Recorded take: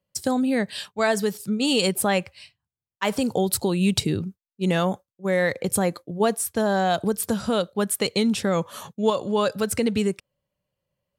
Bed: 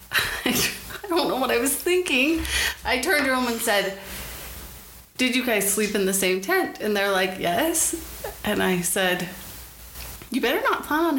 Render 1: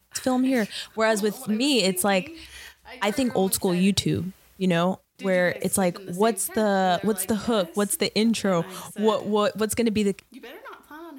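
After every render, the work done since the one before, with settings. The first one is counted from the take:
mix in bed −19.5 dB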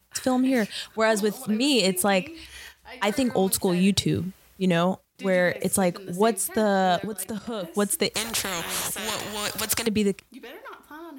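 0:07.04–0:07.64: output level in coarse steps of 15 dB
0:08.14–0:09.87: every bin compressed towards the loudest bin 4 to 1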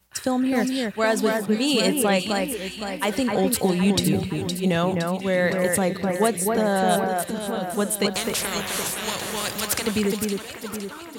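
delay that swaps between a low-pass and a high-pass 257 ms, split 2,400 Hz, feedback 70%, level −3.5 dB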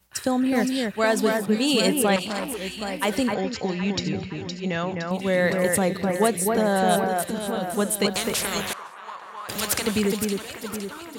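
0:02.16–0:02.61: saturating transformer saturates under 1,900 Hz
0:03.34–0:05.11: Chebyshev low-pass with heavy ripple 7,100 Hz, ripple 6 dB
0:08.73–0:09.49: resonant band-pass 1,100 Hz, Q 3.6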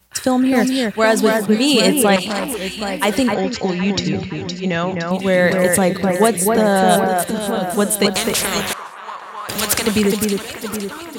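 level +7 dB
brickwall limiter −1 dBFS, peak gain reduction 1 dB

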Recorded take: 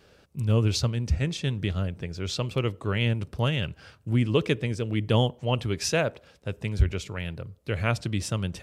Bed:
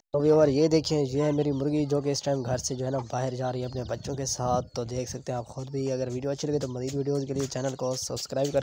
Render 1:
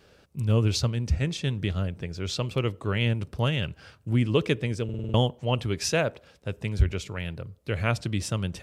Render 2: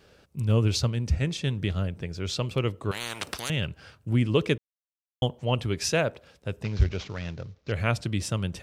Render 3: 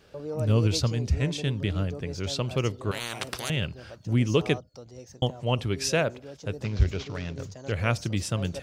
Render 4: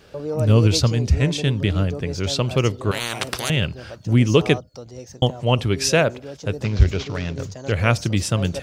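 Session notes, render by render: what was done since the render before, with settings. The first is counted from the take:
0:04.84: stutter in place 0.05 s, 6 plays
0:02.91–0:03.50: every bin compressed towards the loudest bin 10 to 1; 0:04.58–0:05.22: silence; 0:06.63–0:07.72: variable-slope delta modulation 32 kbit/s
mix in bed −13.5 dB
level +7.5 dB

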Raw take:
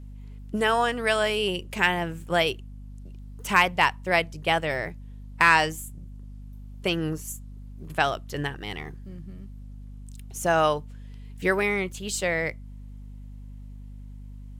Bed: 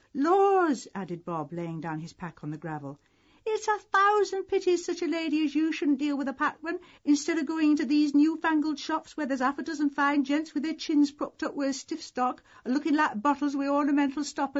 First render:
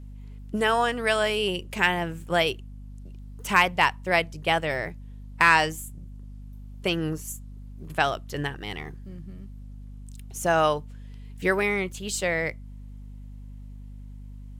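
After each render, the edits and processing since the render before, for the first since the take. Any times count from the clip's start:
no processing that can be heard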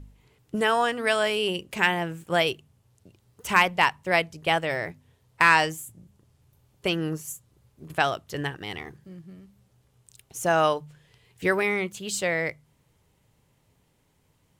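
hum removal 50 Hz, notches 5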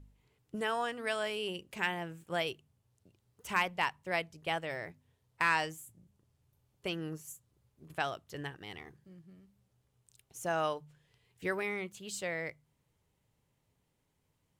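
level −11 dB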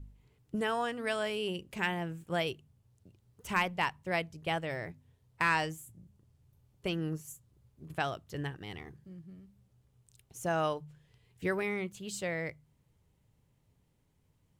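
low-shelf EQ 270 Hz +9 dB

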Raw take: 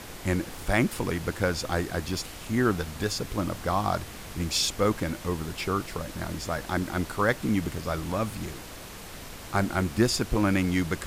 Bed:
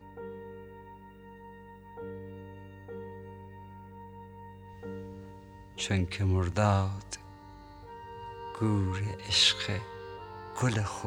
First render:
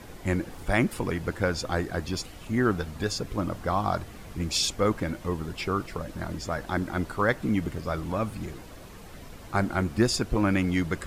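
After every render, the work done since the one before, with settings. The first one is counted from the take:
broadband denoise 9 dB, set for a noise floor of −42 dBFS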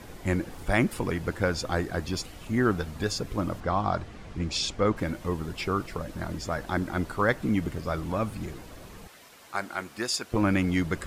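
0:03.60–0:04.97: high-frequency loss of the air 74 metres
0:09.07–0:10.34: high-pass filter 1,100 Hz 6 dB per octave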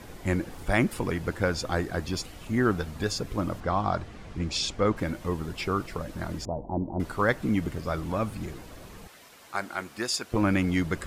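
0:06.45–0:07.00: Chebyshev low-pass filter 960 Hz, order 6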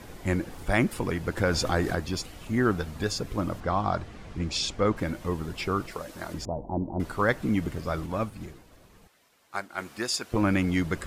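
0:01.37–0:01.95: envelope flattener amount 50%
0:05.91–0:06.34: bass and treble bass −11 dB, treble +4 dB
0:08.06–0:09.78: expander for the loud parts, over −50 dBFS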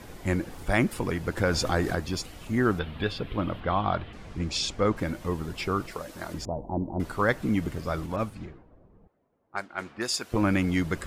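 0:02.79–0:04.13: high shelf with overshoot 4,600 Hz −13 dB, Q 3
0:08.16–0:10.12: low-pass that shuts in the quiet parts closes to 520 Hz, open at −27.5 dBFS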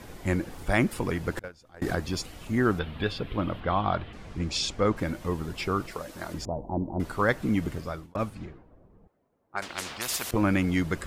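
0:01.39–0:01.82: noise gate −21 dBFS, range −30 dB
0:07.74–0:08.15: fade out
0:09.62–0:10.31: every bin compressed towards the loudest bin 4 to 1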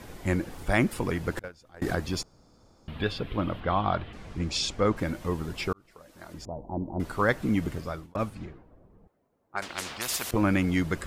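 0:02.23–0:02.88: fill with room tone
0:05.73–0:07.17: fade in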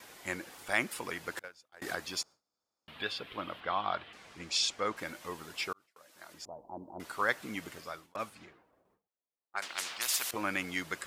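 noise gate with hold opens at −45 dBFS
high-pass filter 1,500 Hz 6 dB per octave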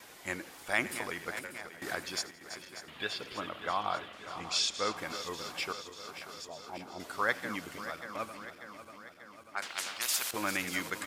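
feedback delay that plays each chunk backwards 295 ms, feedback 78%, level −11 dB
repeating echo 85 ms, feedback 52%, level −21 dB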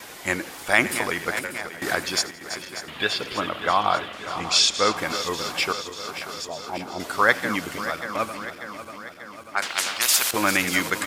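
level +12 dB
brickwall limiter −1 dBFS, peak gain reduction 1 dB

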